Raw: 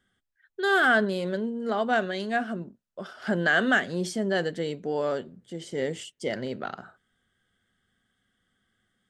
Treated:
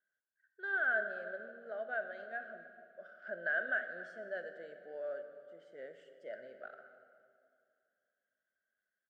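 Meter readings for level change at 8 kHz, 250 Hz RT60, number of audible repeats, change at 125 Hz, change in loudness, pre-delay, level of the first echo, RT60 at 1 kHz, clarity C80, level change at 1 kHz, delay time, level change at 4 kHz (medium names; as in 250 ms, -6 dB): under -35 dB, 2.6 s, 1, under -30 dB, -12.0 dB, 20 ms, -19.5 dB, 2.4 s, 9.5 dB, -17.5 dB, 273 ms, -28.0 dB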